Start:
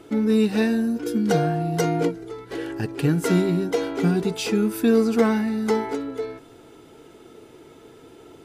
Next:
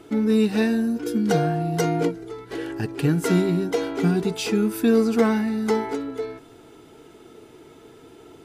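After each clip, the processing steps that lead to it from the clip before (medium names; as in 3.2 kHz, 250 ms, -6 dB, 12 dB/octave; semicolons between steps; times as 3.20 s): band-stop 530 Hz, Q 12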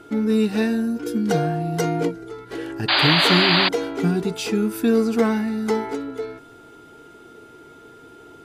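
painted sound noise, 2.88–3.69 s, 540–4900 Hz -18 dBFS; whistle 1.4 kHz -47 dBFS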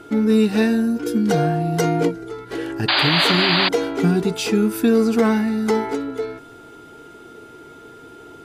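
peak limiter -11 dBFS, peak gain reduction 7 dB; trim +3.5 dB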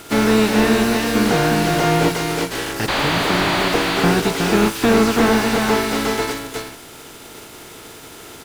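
spectral contrast reduction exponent 0.46; delay 364 ms -5 dB; slew-rate limiter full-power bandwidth 190 Hz; trim +2.5 dB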